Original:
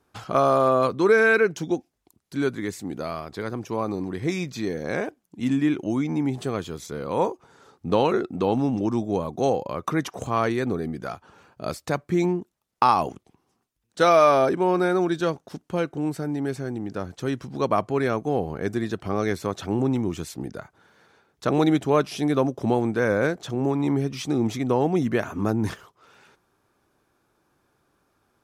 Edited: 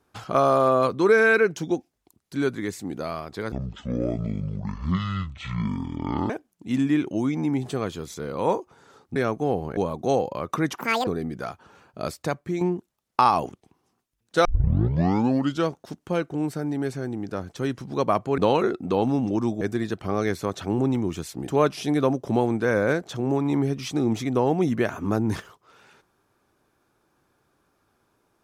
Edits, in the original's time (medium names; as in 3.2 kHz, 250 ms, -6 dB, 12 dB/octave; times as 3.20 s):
3.52–5.02 s: speed 54%
7.88–9.11 s: swap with 18.01–18.62 s
10.12–10.70 s: speed 199%
11.82–12.24 s: fade out, to -7.5 dB
14.08 s: tape start 1.22 s
20.49–21.82 s: delete